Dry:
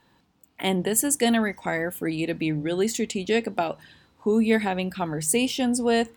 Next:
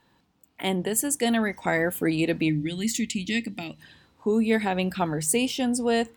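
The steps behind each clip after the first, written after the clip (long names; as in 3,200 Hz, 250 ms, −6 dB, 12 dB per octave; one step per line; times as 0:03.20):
speech leveller 0.5 s
gain on a spectral selection 0:02.49–0:03.81, 330–1,800 Hz −16 dB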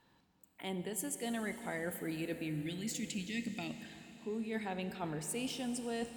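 reversed playback
downward compressor 6 to 1, threshold −31 dBFS, peak gain reduction 13 dB
reversed playback
convolution reverb RT60 4.6 s, pre-delay 30 ms, DRR 9 dB
level −5.5 dB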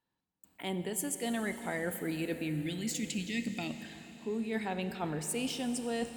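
noise gate with hold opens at −58 dBFS
level +4 dB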